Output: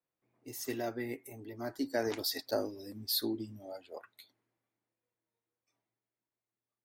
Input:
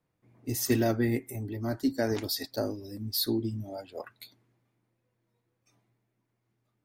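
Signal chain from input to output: Doppler pass-by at 2.63, 9 m/s, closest 7.5 m; tone controls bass -12 dB, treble -2 dB

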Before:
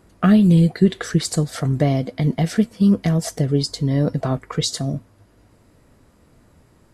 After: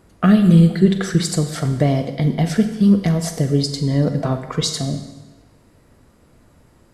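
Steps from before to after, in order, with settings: Schroeder reverb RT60 1.1 s, combs from 32 ms, DRR 7.5 dB; gain +1 dB

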